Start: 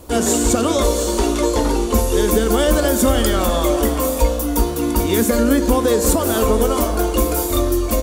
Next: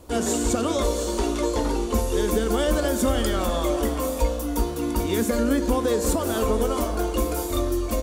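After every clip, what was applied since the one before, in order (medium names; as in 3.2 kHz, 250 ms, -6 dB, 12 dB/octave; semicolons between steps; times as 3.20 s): treble shelf 11 kHz -7.5 dB; trim -6.5 dB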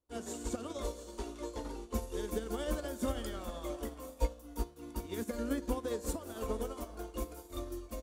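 upward expansion 2.5:1, over -38 dBFS; trim -7.5 dB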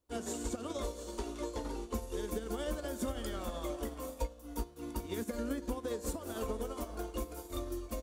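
compression 3:1, threshold -40 dBFS, peak gain reduction 12 dB; trim +5 dB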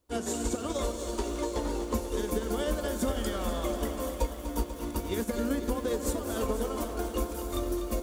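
bit-crushed delay 245 ms, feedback 80%, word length 10-bit, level -10 dB; trim +6.5 dB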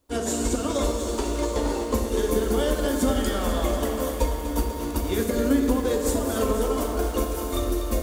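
reverberation RT60 1.5 s, pre-delay 4 ms, DRR 3 dB; trim +5 dB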